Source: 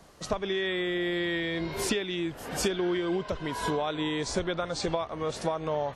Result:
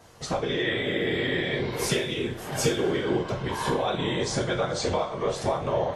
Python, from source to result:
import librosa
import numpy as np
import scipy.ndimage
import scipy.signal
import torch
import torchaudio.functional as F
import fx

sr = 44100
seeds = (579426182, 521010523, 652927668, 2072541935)

y = fx.whisperise(x, sr, seeds[0])
y = fx.rev_double_slope(y, sr, seeds[1], early_s=0.32, late_s=1.6, knee_db=-21, drr_db=-0.5)